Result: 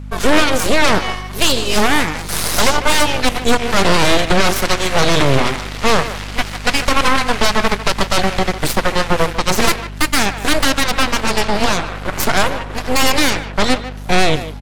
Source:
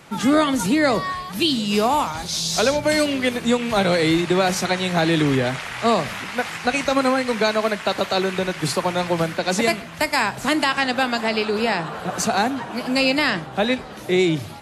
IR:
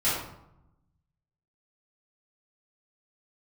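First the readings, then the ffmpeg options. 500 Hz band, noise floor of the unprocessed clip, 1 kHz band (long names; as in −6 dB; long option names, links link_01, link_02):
+2.5 dB, −35 dBFS, +5.0 dB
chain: -filter_complex "[0:a]aeval=exprs='0.473*(cos(1*acos(clip(val(0)/0.473,-1,1)))-cos(1*PI/2))+0.0944*(cos(3*acos(clip(val(0)/0.473,-1,1)))-cos(3*PI/2))+0.211*(cos(6*acos(clip(val(0)/0.473,-1,1)))-cos(6*PI/2))':channel_layout=same,aeval=exprs='val(0)+0.0316*(sin(2*PI*50*n/s)+sin(2*PI*2*50*n/s)/2+sin(2*PI*3*50*n/s)/3+sin(2*PI*4*50*n/s)/4+sin(2*PI*5*50*n/s)/5)':channel_layout=same,asplit=2[link_01][link_02];[link_02]adelay=150,highpass=300,lowpass=3400,asoftclip=type=hard:threshold=-13dB,volume=-11dB[link_03];[link_01][link_03]amix=inputs=2:normalize=0,volume=2dB"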